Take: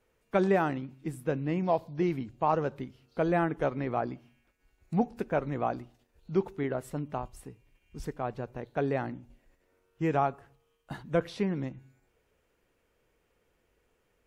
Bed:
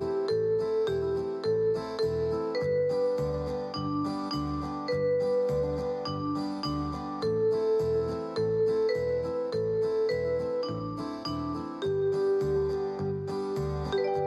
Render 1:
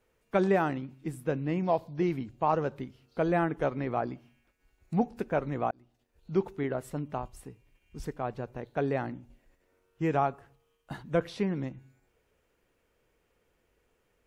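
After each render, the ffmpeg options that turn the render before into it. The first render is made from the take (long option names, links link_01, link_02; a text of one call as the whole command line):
ffmpeg -i in.wav -filter_complex "[0:a]asplit=2[link_01][link_02];[link_01]atrim=end=5.71,asetpts=PTS-STARTPTS,afade=type=out:start_time=5.706:duration=0.004:curve=hsin[link_03];[link_02]atrim=start=5.71,asetpts=PTS-STARTPTS,afade=type=in:duration=0.6[link_04];[link_03][link_04]concat=n=2:v=0:a=1" out.wav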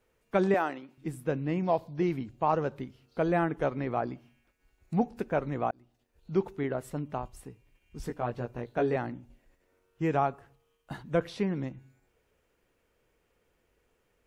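ffmpeg -i in.wav -filter_complex "[0:a]asettb=1/sr,asplit=3[link_01][link_02][link_03];[link_01]atrim=end=0.544[link_04];[link_02]atrim=start=0.54:end=0.98,asetpts=PTS-STARTPTS,afade=type=in:duration=0.004:curve=qsin,afade=type=out:start_time=0.436:duration=0.004:curve=qsin,highpass=390[link_05];[link_03]atrim=start=0.976[link_06];[link_04][link_05]acrossfade=duration=0.004:curve1=hsin:curve2=qsin[link_07];[link_07][link_06]acrossfade=duration=0.004:curve1=qsin:curve2=hsin,asettb=1/sr,asplit=3[link_08][link_09][link_10];[link_08]atrim=end=8.034[link_11];[link_09]atrim=start=8.03:end=8.96,asetpts=PTS-STARTPTS,afade=type=in:duration=0.004:curve=qsin,afade=type=out:start_time=0.926:duration=0.004:curve=qsin,asplit=2[link_12][link_13];[link_13]adelay=17,volume=-3.5dB[link_14];[link_12][link_14]amix=inputs=2:normalize=0,atrim=end_sample=41013[link_15];[link_10]atrim=start=8.956[link_16];[link_11][link_15]acrossfade=duration=0.004:curve1=hsin:curve2=qsin[link_17];[link_17][link_16]acrossfade=duration=0.004:curve1=qsin:curve2=hsin" out.wav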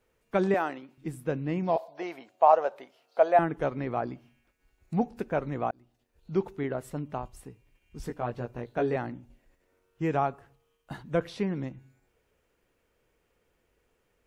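ffmpeg -i in.wav -filter_complex "[0:a]asettb=1/sr,asplit=3[link_01][link_02][link_03];[link_01]atrim=end=1.764[link_04];[link_02]atrim=start=1.76:end=3.39,asetpts=PTS-STARTPTS,afade=type=in:duration=0.004:curve=qsin,afade=type=out:start_time=1.626:duration=0.004:curve=qsin,highpass=frequency=660:width_type=q:width=3.7[link_05];[link_03]atrim=start=3.386[link_06];[link_04][link_05]acrossfade=duration=0.004:curve1=hsin:curve2=qsin[link_07];[link_07][link_06]acrossfade=duration=0.004:curve1=qsin:curve2=hsin" out.wav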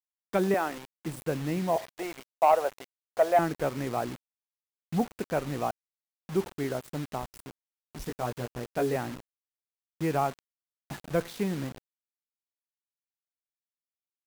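ffmpeg -i in.wav -af "asoftclip=type=tanh:threshold=-12dB,acrusher=bits=6:mix=0:aa=0.000001" out.wav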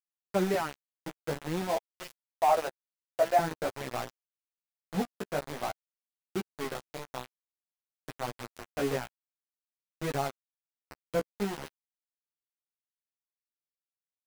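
ffmpeg -i in.wav -af "aeval=exprs='val(0)*gte(abs(val(0)),0.0376)':channel_layout=same,flanger=delay=7.6:depth=8.3:regen=2:speed=0.49:shape=sinusoidal" out.wav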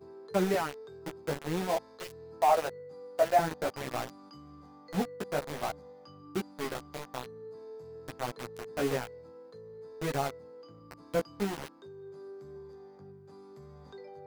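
ffmpeg -i in.wav -i bed.wav -filter_complex "[1:a]volume=-19.5dB[link_01];[0:a][link_01]amix=inputs=2:normalize=0" out.wav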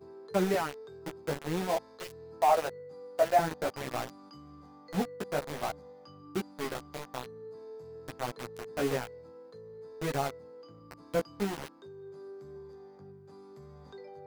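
ffmpeg -i in.wav -af anull out.wav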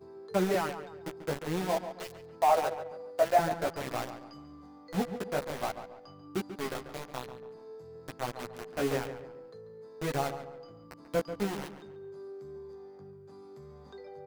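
ffmpeg -i in.wav -filter_complex "[0:a]asplit=2[link_01][link_02];[link_02]adelay=140,lowpass=frequency=2700:poles=1,volume=-10dB,asplit=2[link_03][link_04];[link_04]adelay=140,lowpass=frequency=2700:poles=1,volume=0.39,asplit=2[link_05][link_06];[link_06]adelay=140,lowpass=frequency=2700:poles=1,volume=0.39,asplit=2[link_07][link_08];[link_08]adelay=140,lowpass=frequency=2700:poles=1,volume=0.39[link_09];[link_01][link_03][link_05][link_07][link_09]amix=inputs=5:normalize=0" out.wav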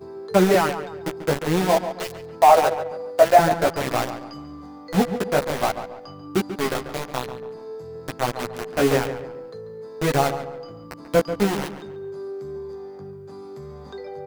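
ffmpeg -i in.wav -af "volume=11.5dB,alimiter=limit=-3dB:level=0:latency=1" out.wav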